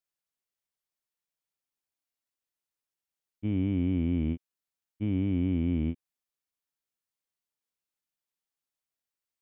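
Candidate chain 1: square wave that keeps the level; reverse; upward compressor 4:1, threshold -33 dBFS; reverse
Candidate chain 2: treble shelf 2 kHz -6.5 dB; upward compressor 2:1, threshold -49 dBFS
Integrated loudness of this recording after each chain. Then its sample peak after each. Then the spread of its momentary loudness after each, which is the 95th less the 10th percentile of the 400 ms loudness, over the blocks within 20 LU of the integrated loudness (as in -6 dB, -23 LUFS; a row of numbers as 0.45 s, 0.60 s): -26.5 LUFS, -30.0 LUFS; -18.5 dBFS, -19.0 dBFS; 9 LU, 9 LU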